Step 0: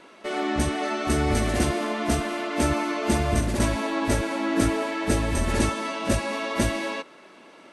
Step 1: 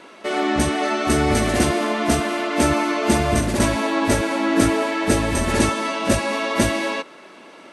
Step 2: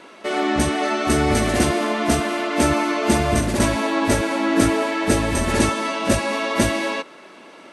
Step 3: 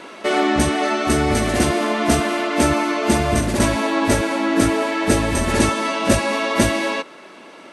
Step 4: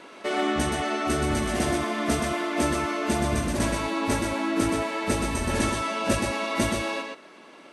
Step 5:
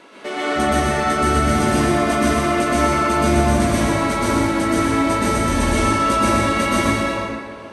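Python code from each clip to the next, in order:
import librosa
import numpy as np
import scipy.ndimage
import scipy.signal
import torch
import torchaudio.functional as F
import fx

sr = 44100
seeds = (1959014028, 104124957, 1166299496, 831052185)

y1 = fx.low_shelf(x, sr, hz=63.0, db=-11.5)
y1 = F.gain(torch.from_numpy(y1), 6.0).numpy()
y2 = y1
y3 = fx.rider(y2, sr, range_db=10, speed_s=0.5)
y3 = F.gain(torch.from_numpy(y3), 1.5).numpy()
y4 = y3 + 10.0 ** (-4.5 / 20.0) * np.pad(y3, (int(124 * sr / 1000.0), 0))[:len(y3)]
y4 = F.gain(torch.from_numpy(y4), -8.5).numpy()
y5 = fx.rev_plate(y4, sr, seeds[0], rt60_s=2.0, hf_ratio=0.45, predelay_ms=110, drr_db=-7.0)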